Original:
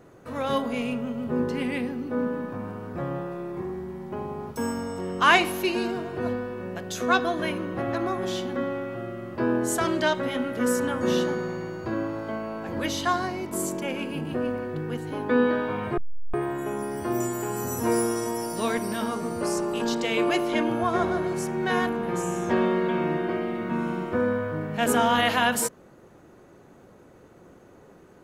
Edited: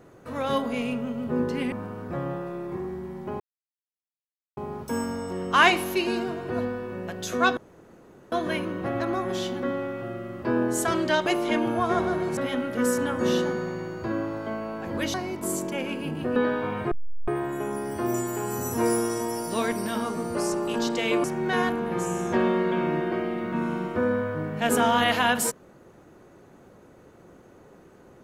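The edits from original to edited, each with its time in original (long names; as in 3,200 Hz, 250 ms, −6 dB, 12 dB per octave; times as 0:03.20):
0:01.72–0:02.57: remove
0:04.25: splice in silence 1.17 s
0:07.25: splice in room tone 0.75 s
0:12.96–0:13.24: remove
0:14.46–0:15.42: remove
0:20.30–0:21.41: move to 0:10.19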